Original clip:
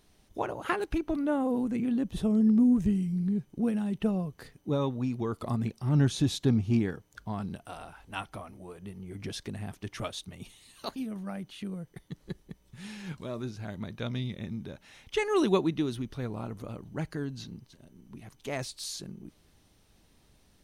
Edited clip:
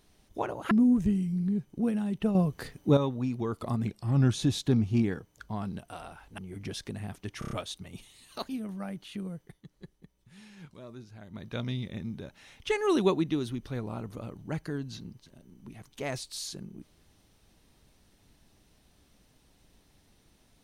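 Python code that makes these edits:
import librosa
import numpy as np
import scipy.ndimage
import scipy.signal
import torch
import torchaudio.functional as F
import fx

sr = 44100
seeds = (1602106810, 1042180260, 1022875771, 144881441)

y = fx.edit(x, sr, fx.cut(start_s=0.71, length_s=1.8),
    fx.clip_gain(start_s=4.15, length_s=0.62, db=7.5),
    fx.speed_span(start_s=5.67, length_s=0.42, speed=0.93),
    fx.cut(start_s=8.15, length_s=0.82),
    fx.stutter(start_s=9.98, slice_s=0.03, count=5),
    fx.fade_down_up(start_s=11.82, length_s=2.18, db=-9.5, fade_s=0.26), tone=tone)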